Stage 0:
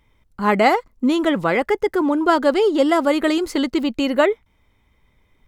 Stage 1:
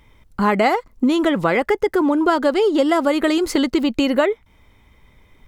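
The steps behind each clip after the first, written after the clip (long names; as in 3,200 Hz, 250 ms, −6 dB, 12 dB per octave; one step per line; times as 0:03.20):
downward compressor 3 to 1, threshold −25 dBFS, peak gain reduction 11.5 dB
level +8.5 dB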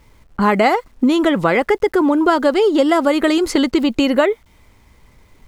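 low-pass that shuts in the quiet parts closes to 1,900 Hz, open at −16 dBFS
bit-depth reduction 10 bits, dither none
level +2.5 dB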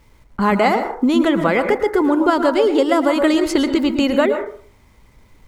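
dense smooth reverb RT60 0.51 s, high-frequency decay 0.35×, pre-delay 100 ms, DRR 7.5 dB
level −2 dB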